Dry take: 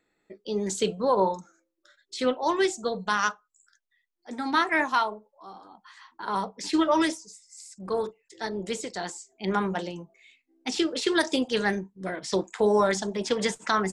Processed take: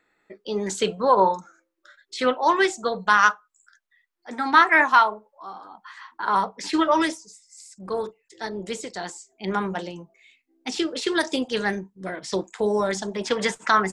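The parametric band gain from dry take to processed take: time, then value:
parametric band 1,400 Hz 2.1 octaves
0:06.54 +9.5 dB
0:07.25 +1.5 dB
0:12.29 +1.5 dB
0:12.75 −5 dB
0:13.26 +7 dB

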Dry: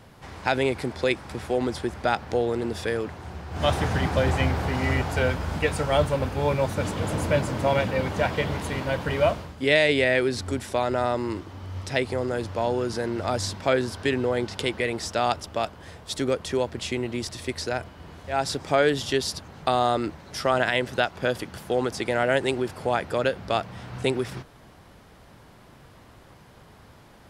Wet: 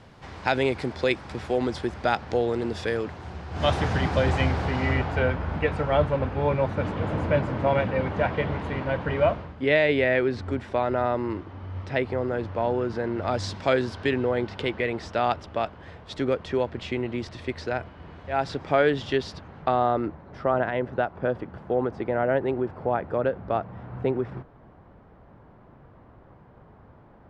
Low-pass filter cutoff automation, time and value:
0:04.55 5,900 Hz
0:05.29 2,300 Hz
0:13.17 2,300 Hz
0:13.58 6,000 Hz
0:14.29 2,800 Hz
0:19.24 2,800 Hz
0:20.24 1,200 Hz

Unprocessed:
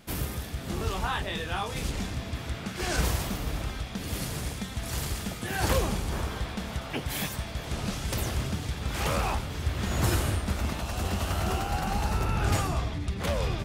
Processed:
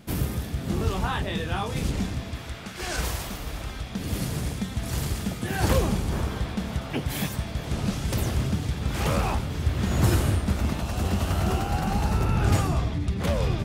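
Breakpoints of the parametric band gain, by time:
parametric band 160 Hz 3 octaves
0:02.00 +7.5 dB
0:02.53 −4 dB
0:03.56 −4 dB
0:04.08 +6.5 dB

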